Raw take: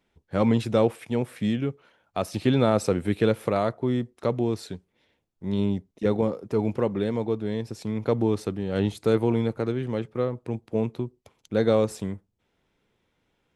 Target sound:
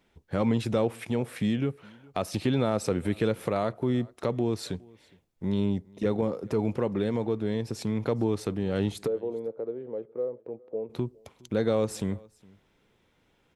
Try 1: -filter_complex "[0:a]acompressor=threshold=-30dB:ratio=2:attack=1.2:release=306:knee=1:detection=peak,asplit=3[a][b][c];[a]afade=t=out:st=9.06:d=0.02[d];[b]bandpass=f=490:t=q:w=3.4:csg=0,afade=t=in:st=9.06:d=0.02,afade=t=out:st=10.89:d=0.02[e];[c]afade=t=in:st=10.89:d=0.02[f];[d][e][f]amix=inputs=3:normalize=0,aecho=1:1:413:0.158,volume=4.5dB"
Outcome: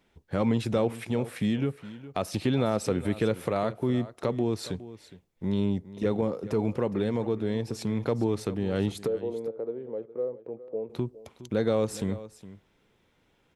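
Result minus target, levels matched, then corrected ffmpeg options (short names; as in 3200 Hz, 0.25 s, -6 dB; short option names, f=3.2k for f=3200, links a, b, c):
echo-to-direct +9.5 dB
-filter_complex "[0:a]acompressor=threshold=-30dB:ratio=2:attack=1.2:release=306:knee=1:detection=peak,asplit=3[a][b][c];[a]afade=t=out:st=9.06:d=0.02[d];[b]bandpass=f=490:t=q:w=3.4:csg=0,afade=t=in:st=9.06:d=0.02,afade=t=out:st=10.89:d=0.02[e];[c]afade=t=in:st=10.89:d=0.02[f];[d][e][f]amix=inputs=3:normalize=0,aecho=1:1:413:0.0531,volume=4.5dB"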